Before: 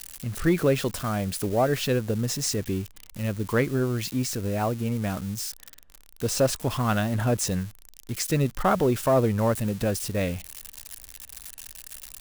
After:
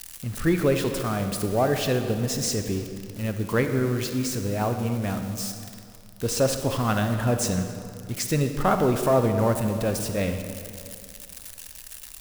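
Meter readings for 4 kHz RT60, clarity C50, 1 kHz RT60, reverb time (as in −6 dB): 1.7 s, 7.0 dB, 2.4 s, 2.4 s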